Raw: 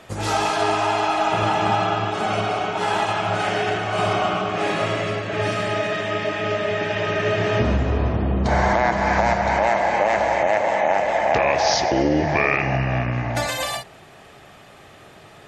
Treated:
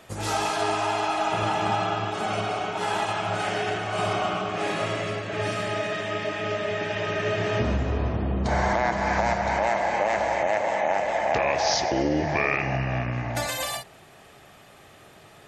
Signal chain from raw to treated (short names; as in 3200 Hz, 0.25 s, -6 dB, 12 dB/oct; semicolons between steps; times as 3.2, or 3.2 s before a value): high shelf 9100 Hz +9.5 dB; gain -5 dB